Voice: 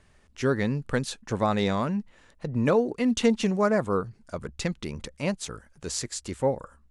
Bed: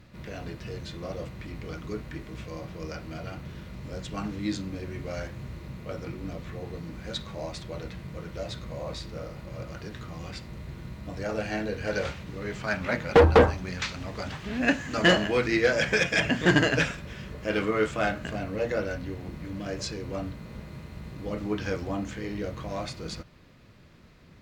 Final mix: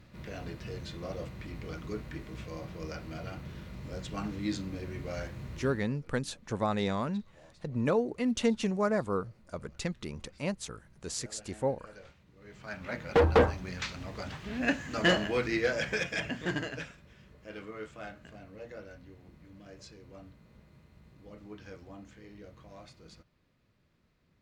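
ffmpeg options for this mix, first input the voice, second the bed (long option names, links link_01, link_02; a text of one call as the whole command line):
ffmpeg -i stem1.wav -i stem2.wav -filter_complex "[0:a]adelay=5200,volume=-5.5dB[link_01];[1:a]volume=14.5dB,afade=type=out:start_time=5.65:duration=0.24:silence=0.105925,afade=type=in:start_time=12.36:duration=1.04:silence=0.133352,afade=type=out:start_time=15.4:duration=1.47:silence=0.251189[link_02];[link_01][link_02]amix=inputs=2:normalize=0" out.wav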